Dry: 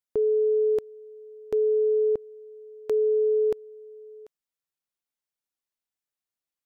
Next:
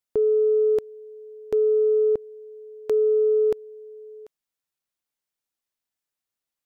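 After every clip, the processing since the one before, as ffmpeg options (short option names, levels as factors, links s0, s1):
-af "acontrast=48,volume=0.708"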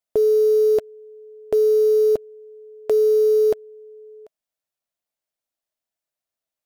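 -filter_complex "[0:a]equalizer=f=640:t=o:w=0.37:g=11.5,asplit=2[s0][s1];[s1]acrusher=bits=5:mix=0:aa=0.000001,volume=0.631[s2];[s0][s2]amix=inputs=2:normalize=0,volume=0.794"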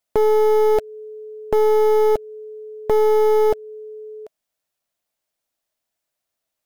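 -filter_complex "[0:a]asplit=2[s0][s1];[s1]acompressor=threshold=0.0501:ratio=6,volume=0.891[s2];[s0][s2]amix=inputs=2:normalize=0,aeval=exprs='clip(val(0),-1,0.0841)':c=same,volume=1.19"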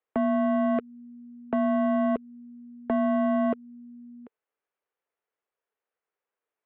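-filter_complex "[0:a]acrossover=split=590 2300:gain=0.112 1 0.158[s0][s1][s2];[s0][s1][s2]amix=inputs=3:normalize=0,highpass=f=150:t=q:w=0.5412,highpass=f=150:t=q:w=1.307,lowpass=f=3500:t=q:w=0.5176,lowpass=f=3500:t=q:w=0.7071,lowpass=f=3500:t=q:w=1.932,afreqshift=-190"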